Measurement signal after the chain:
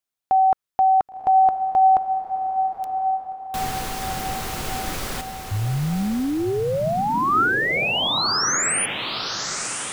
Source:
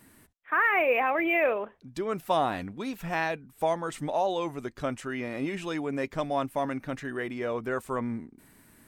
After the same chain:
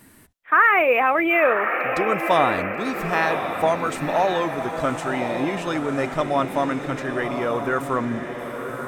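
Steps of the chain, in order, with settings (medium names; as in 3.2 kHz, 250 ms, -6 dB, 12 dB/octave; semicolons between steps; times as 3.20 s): dynamic bell 1.3 kHz, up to +6 dB, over -48 dBFS, Q 3.6; on a send: echo that smears into a reverb 1054 ms, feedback 49%, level -6.5 dB; on the sum: trim +6 dB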